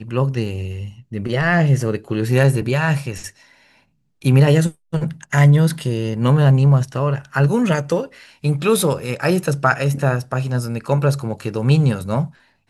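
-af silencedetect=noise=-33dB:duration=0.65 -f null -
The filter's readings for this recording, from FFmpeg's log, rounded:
silence_start: 3.30
silence_end: 4.22 | silence_duration: 0.92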